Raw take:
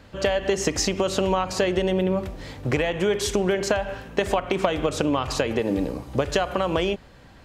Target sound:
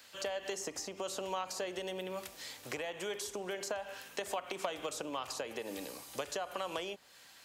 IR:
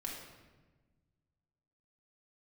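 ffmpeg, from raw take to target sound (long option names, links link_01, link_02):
-filter_complex "[0:a]aderivative,acrossover=split=140|1100[link_01][link_02][link_03];[link_03]acompressor=threshold=-50dB:ratio=6[link_04];[link_01][link_02][link_04]amix=inputs=3:normalize=0,volume=7dB"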